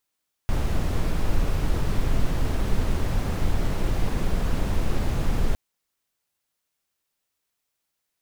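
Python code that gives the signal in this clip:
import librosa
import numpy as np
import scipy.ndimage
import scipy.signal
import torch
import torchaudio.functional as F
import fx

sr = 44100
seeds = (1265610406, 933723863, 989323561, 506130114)

y = fx.noise_colour(sr, seeds[0], length_s=5.06, colour='brown', level_db=-21.0)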